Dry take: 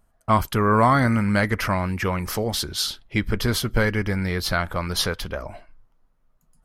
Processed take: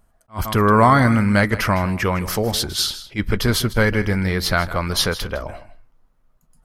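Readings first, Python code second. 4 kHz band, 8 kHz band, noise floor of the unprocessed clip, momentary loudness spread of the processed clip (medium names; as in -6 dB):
+4.0 dB, +4.0 dB, -64 dBFS, 13 LU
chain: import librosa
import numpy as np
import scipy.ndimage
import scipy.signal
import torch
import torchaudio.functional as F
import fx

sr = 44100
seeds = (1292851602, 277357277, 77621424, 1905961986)

y = x + 10.0 ** (-15.0 / 20.0) * np.pad(x, (int(158 * sr / 1000.0), 0))[:len(x)]
y = fx.attack_slew(y, sr, db_per_s=330.0)
y = F.gain(torch.from_numpy(y), 4.0).numpy()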